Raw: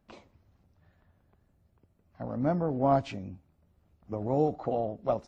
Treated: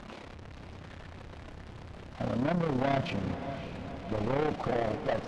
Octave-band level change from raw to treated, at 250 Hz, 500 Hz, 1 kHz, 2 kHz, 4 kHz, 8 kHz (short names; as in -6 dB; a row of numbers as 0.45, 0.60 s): -0.5 dB, -2.0 dB, -2.0 dB, +10.5 dB, +8.5 dB, n/a